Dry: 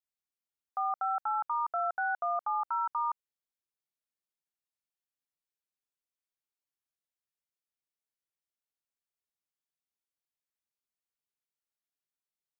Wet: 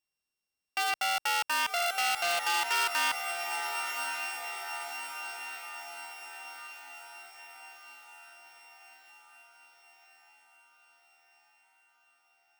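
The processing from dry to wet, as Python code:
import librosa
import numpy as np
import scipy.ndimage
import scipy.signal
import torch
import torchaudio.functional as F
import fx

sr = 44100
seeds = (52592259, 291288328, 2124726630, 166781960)

y = np.r_[np.sort(x[:len(x) // 16 * 16].reshape(-1, 16), axis=1).ravel(), x[len(x) // 16 * 16:]]
y = fx.echo_diffused(y, sr, ms=1042, feedback_pct=57, wet_db=-9)
y = fx.transformer_sat(y, sr, knee_hz=3300.0)
y = F.gain(torch.from_numpy(y), 5.5).numpy()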